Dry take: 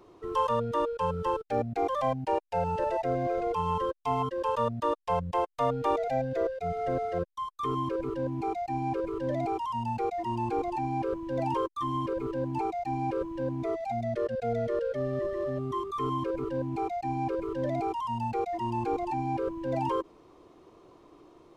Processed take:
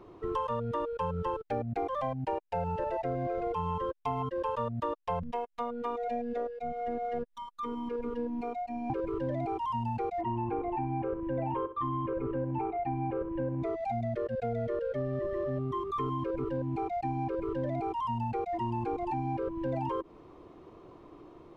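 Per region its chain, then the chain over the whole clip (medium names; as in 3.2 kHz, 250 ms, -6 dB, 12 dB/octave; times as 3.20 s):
5.23–8.90 s: upward compressor, threshold -36 dBFS + tremolo 1 Hz, depth 45% + robot voice 238 Hz
10.21–13.62 s: low-pass 2.7 kHz 24 dB/octave + flutter echo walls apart 10.8 m, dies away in 0.28 s
whole clip: tone controls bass +4 dB, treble -11 dB; compression, threshold -32 dBFS; trim +2.5 dB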